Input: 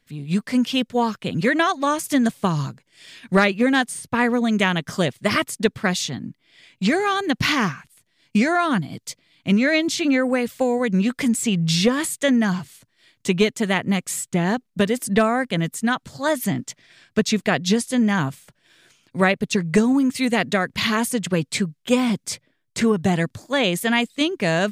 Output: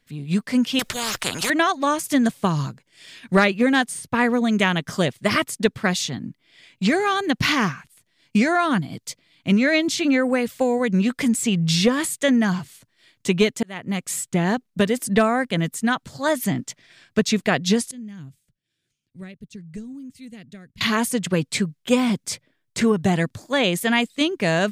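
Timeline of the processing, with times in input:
0.79–1.5 spectral compressor 4:1
13.63–14.13 fade in
17.91–20.81 passive tone stack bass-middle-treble 10-0-1

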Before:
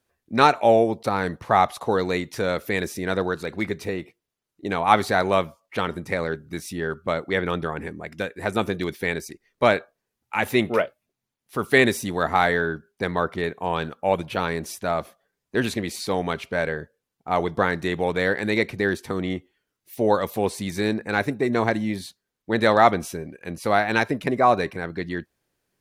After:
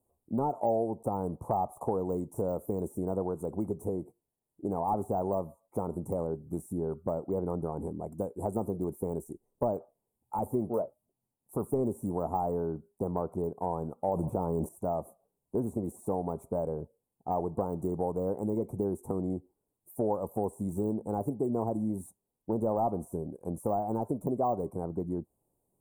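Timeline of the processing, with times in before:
14.08–14.69 fast leveller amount 70%
whole clip: de-esser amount 90%; elliptic band-stop 900–8300 Hz, stop band 40 dB; compressor 2.5:1, threshold -30 dBFS

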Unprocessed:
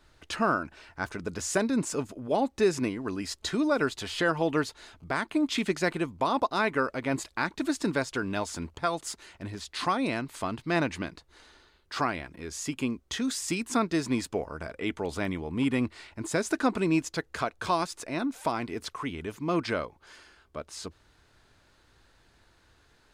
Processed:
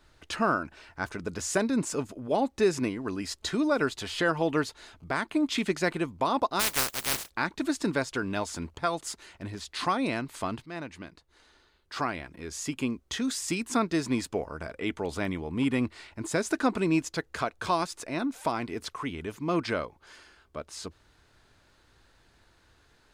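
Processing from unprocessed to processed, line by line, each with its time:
6.59–7.29 spectral contrast lowered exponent 0.13
10.66–12.54 fade in, from -13.5 dB

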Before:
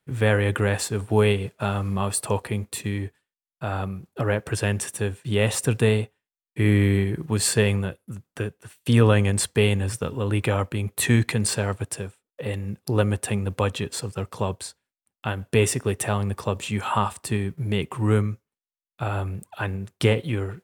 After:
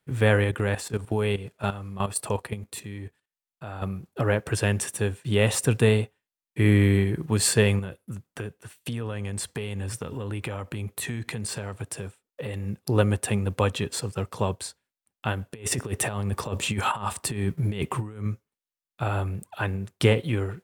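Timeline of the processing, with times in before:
0.44–3.82 level quantiser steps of 12 dB
7.79–12.66 compressor, threshold -28 dBFS
15.51–18.26 negative-ratio compressor -27 dBFS, ratio -0.5

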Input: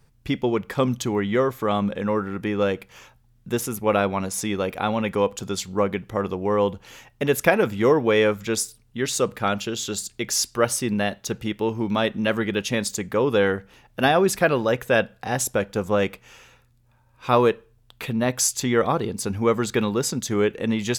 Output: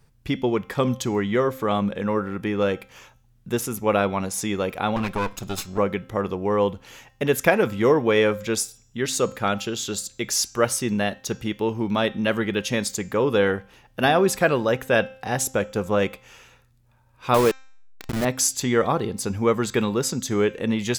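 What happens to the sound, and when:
4.96–5.78 minimum comb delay 0.76 ms
17.34–18.25 level-crossing sampler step -21.5 dBFS
whole clip: de-hum 263.1 Hz, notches 30

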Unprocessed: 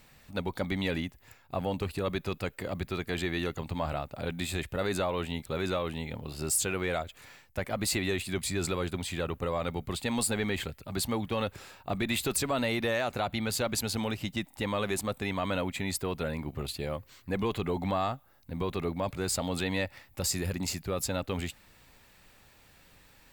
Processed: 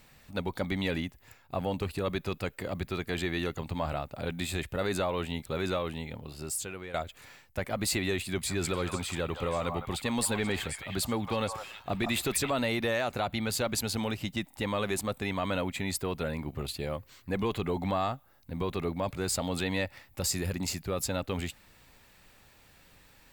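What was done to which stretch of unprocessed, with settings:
5.75–6.94 fade out, to -12.5 dB
8.25–12.5 delay with a stepping band-pass 0.161 s, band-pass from 950 Hz, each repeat 1.4 oct, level -2.5 dB

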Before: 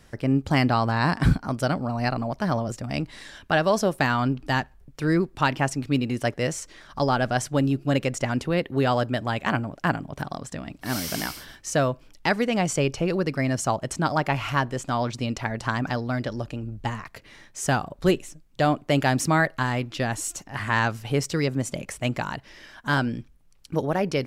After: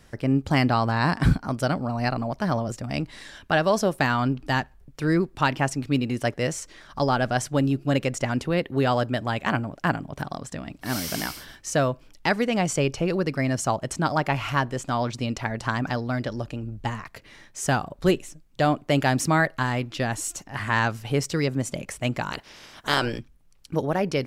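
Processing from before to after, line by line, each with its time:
22.31–23.18 spectral limiter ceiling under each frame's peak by 19 dB

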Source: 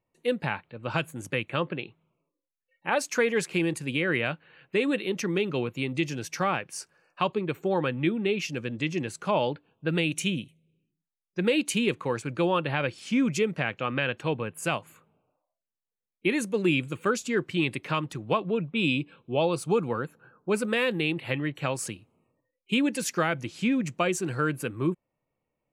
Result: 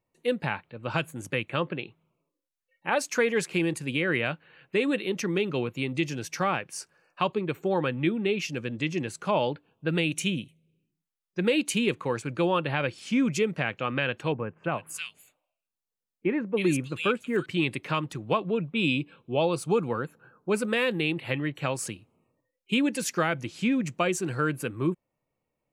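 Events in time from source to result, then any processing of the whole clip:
14.32–17.46 bands offset in time lows, highs 0.32 s, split 2100 Hz

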